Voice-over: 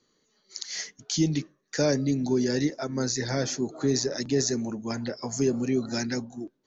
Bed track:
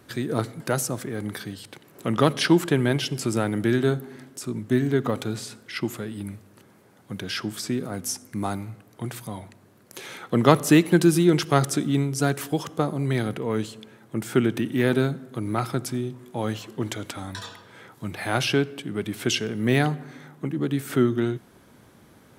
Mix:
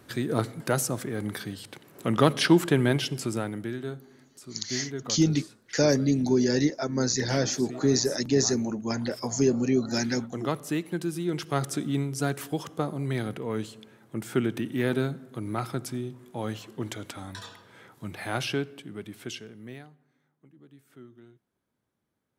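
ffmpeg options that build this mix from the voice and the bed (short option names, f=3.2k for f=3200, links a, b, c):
-filter_complex "[0:a]adelay=4000,volume=2dB[a];[1:a]volume=7dB,afade=t=out:st=2.9:d=0.84:silence=0.251189,afade=t=in:st=11.15:d=0.72:silence=0.398107,afade=t=out:st=18.18:d=1.69:silence=0.0668344[b];[a][b]amix=inputs=2:normalize=0"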